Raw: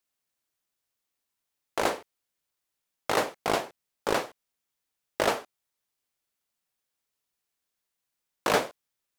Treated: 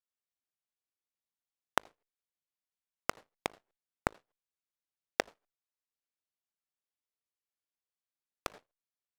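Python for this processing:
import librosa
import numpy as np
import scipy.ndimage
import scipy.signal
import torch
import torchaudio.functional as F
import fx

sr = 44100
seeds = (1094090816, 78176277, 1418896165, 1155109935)

y = fx.cheby_harmonics(x, sr, harmonics=(5, 7, 8), levels_db=(-39, -17, -27), full_scale_db=-10.0)
y = fx.high_shelf(y, sr, hz=9400.0, db=-8.5)
y = fx.gate_flip(y, sr, shuts_db=-29.0, range_db=-42)
y = F.gain(torch.from_numpy(y), 9.5).numpy()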